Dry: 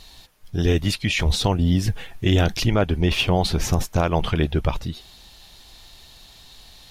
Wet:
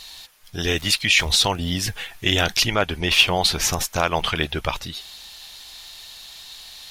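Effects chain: 0.76–1.67 crackle 120/s -> 26/s -34 dBFS; tilt shelf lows -8.5 dB, about 640 Hz

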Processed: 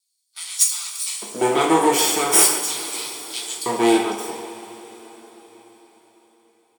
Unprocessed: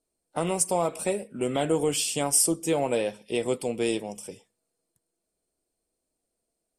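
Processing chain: minimum comb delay 0.88 ms; LFO high-pass square 0.41 Hz 380–4500 Hz; speakerphone echo 0.14 s, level -8 dB; two-slope reverb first 0.43 s, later 4.8 s, from -18 dB, DRR -1.5 dB; gain +6.5 dB

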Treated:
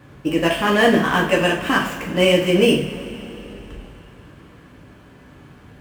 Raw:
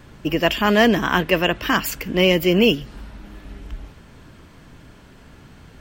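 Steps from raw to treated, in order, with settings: median filter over 9 samples; HPF 61 Hz; two-slope reverb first 0.42 s, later 3.4 s, from -18 dB, DRR -2.5 dB; gain -2.5 dB

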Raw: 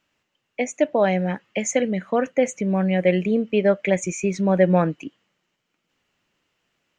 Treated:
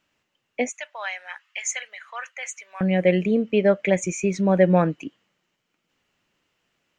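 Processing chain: 0.69–2.81 HPF 1100 Hz 24 dB/oct

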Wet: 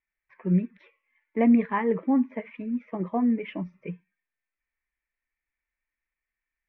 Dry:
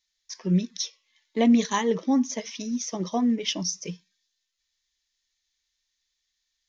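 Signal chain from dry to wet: Chebyshev low-pass 2400 Hz, order 5

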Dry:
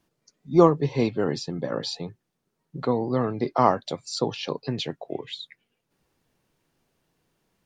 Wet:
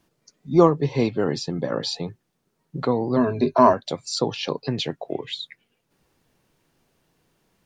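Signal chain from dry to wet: 3.16–3.73 ripple EQ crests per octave 1.5, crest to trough 16 dB; in parallel at -2 dB: compressor, threshold -30 dBFS, peak gain reduction 18.5 dB

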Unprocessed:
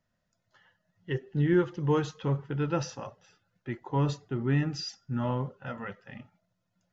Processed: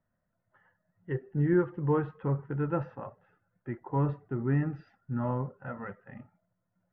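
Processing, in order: LPF 1800 Hz 24 dB/oct; gain -1 dB

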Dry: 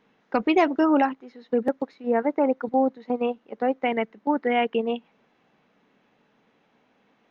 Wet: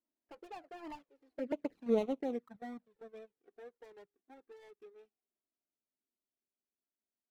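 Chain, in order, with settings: median filter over 41 samples; Doppler pass-by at 1.82, 33 m/s, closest 4 m; low shelf 290 Hz -4 dB; envelope flanger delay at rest 3.1 ms, full sweep at -31 dBFS

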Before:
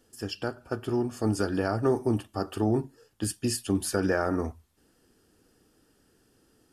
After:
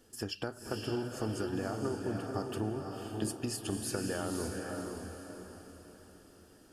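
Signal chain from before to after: compressor 6:1, threshold -35 dBFS, peak gain reduction 14.5 dB; diffused feedback echo 0.527 s, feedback 43%, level -3 dB; gain +1.5 dB

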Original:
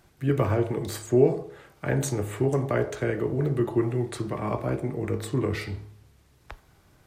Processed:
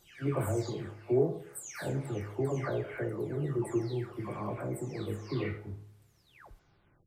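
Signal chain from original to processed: spectral delay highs early, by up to 0.474 s; gain -6.5 dB

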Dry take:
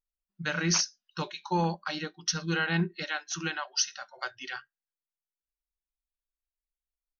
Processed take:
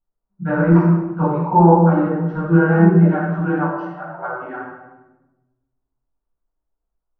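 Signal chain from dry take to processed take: LPF 1100 Hz 24 dB/oct; low shelf 70 Hz -9.5 dB; shoebox room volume 510 m³, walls mixed, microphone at 7.5 m; gain +3 dB

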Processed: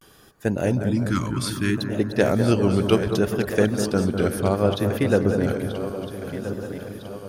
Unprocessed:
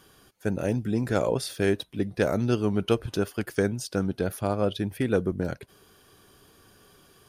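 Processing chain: regenerating reverse delay 0.655 s, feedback 67%, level -10 dB; 0.91–1.77 Chebyshev band-stop 330–1100 Hz, order 3; vibrato 0.64 Hz 92 cents; on a send: analogue delay 0.201 s, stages 2048, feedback 61%, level -8 dB; on the sum: gain +4.5 dB

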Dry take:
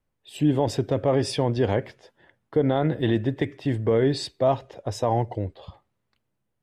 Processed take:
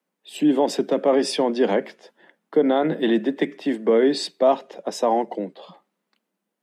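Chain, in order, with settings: steep high-pass 170 Hz 96 dB/oct; gain +4 dB

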